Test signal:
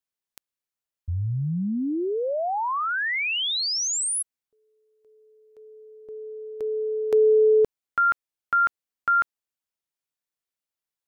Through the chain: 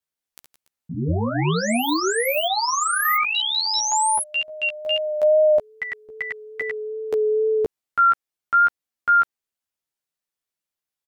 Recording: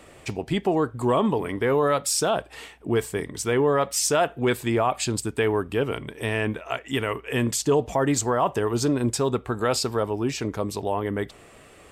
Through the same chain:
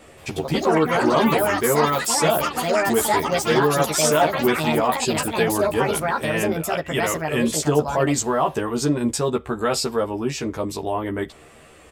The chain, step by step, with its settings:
delay with pitch and tempo change per echo 177 ms, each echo +6 semitones, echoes 3
double-tracking delay 13 ms −2.5 dB
tape wow and flutter 21 cents

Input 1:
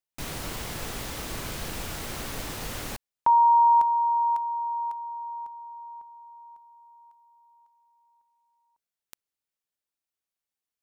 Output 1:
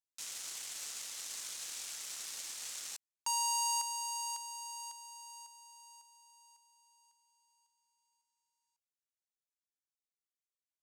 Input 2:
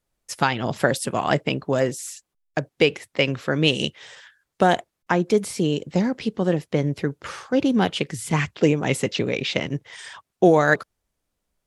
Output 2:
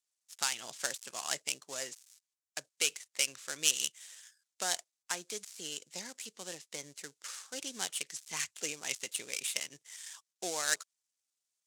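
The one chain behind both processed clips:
gap after every zero crossing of 0.096 ms
resonant band-pass 7,100 Hz, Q 1.8
level +4 dB

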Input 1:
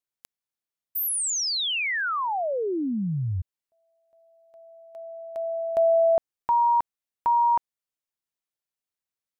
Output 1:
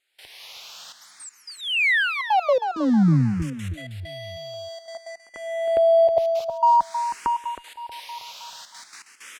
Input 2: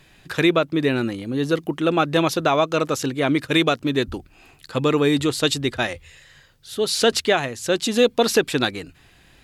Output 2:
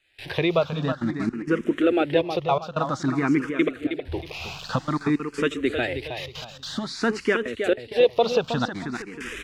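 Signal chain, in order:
spike at every zero crossing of −23 dBFS
camcorder AGC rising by 34 dB per second
gate pattern "..xxxxxxxx.x.x" 163 BPM −24 dB
low-pass filter 2,600 Hz 12 dB per octave
on a send: repeating echo 317 ms, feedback 37%, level −8 dB
on the sum: frequency shifter mixed with the dry sound +0.52 Hz

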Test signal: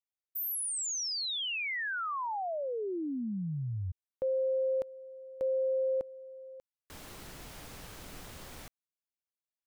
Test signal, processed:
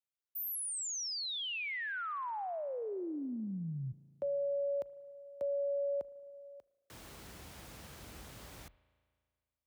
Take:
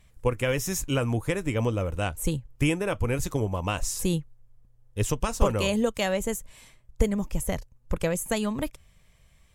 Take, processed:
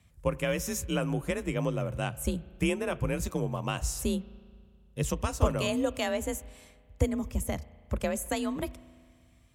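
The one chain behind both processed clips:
frequency shifter +38 Hz
spring reverb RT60 2 s, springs 36 ms, chirp 30 ms, DRR 18.5 dB
level −4 dB

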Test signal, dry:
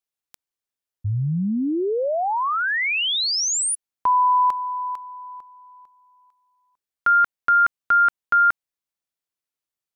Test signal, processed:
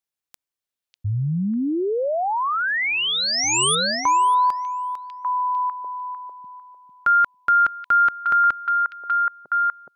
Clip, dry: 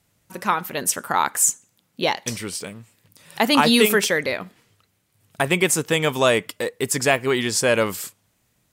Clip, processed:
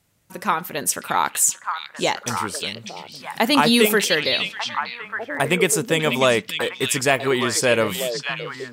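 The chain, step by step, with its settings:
echo through a band-pass that steps 597 ms, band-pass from 3,400 Hz, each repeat −1.4 octaves, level −1 dB

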